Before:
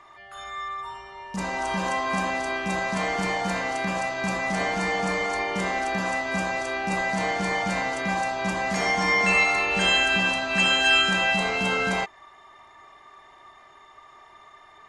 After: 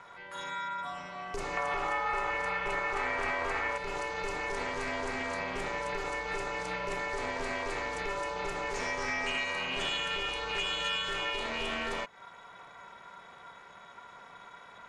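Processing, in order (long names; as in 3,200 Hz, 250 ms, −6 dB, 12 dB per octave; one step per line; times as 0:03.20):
0:01.57–0:03.78: graphic EQ with 10 bands 125 Hz +10 dB, 1,000 Hz +10 dB, 2,000 Hz +9 dB
downward compressor 3 to 1, threshold −34 dBFS, peak gain reduction 15 dB
ring modulation 210 Hz
highs frequency-modulated by the lows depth 0.14 ms
level +2.5 dB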